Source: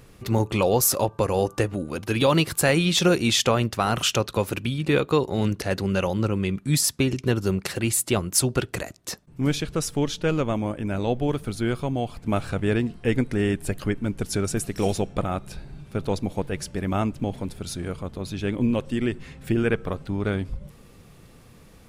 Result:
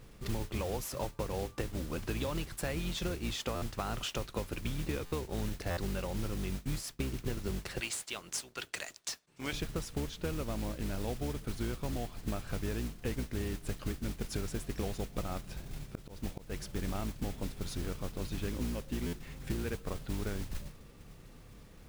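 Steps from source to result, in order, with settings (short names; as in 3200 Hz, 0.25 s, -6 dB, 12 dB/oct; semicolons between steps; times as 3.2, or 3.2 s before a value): octaver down 2 oct, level +2 dB; 7.8–9.53 weighting filter ITU-R 468; compressor 10:1, threshold -26 dBFS, peak gain reduction 20 dB; modulation noise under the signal 10 dB; 15.95–16.58 auto swell 0.182 s; high shelf 6700 Hz -8.5 dB; stuck buffer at 3.55/5.05/5.7/19.06, samples 512, times 5; gain -6 dB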